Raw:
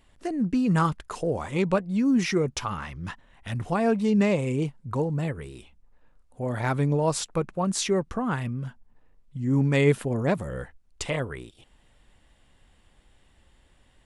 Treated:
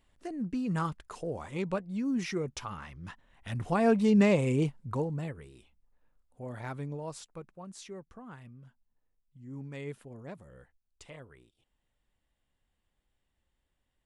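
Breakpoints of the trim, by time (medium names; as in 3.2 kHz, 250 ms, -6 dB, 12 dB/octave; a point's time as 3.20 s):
3.11 s -9 dB
3.90 s -1 dB
4.68 s -1 dB
5.49 s -11.5 dB
6.48 s -11.5 dB
7.68 s -20 dB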